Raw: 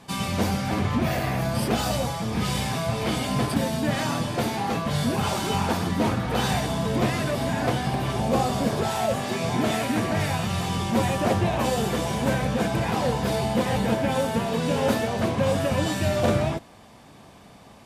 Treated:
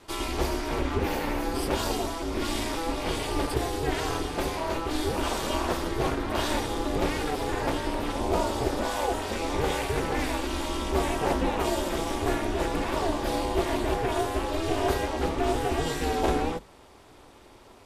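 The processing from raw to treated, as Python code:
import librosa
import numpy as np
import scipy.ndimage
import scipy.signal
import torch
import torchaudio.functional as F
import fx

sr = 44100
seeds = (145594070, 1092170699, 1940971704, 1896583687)

y = x * np.sin(2.0 * np.pi * 160.0 * np.arange(len(x)) / sr)
y = fx.hum_notches(y, sr, base_hz=50, count=5)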